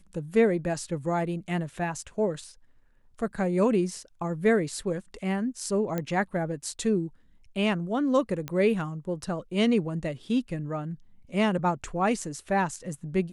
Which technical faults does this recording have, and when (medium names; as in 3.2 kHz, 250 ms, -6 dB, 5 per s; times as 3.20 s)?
5.98 s: pop -16 dBFS
8.48 s: pop -17 dBFS